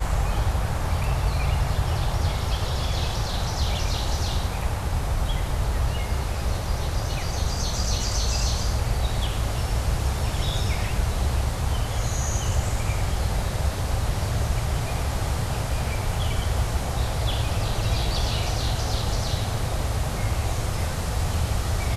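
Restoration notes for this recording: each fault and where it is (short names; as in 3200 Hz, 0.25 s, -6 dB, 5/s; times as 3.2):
7.98 gap 2.6 ms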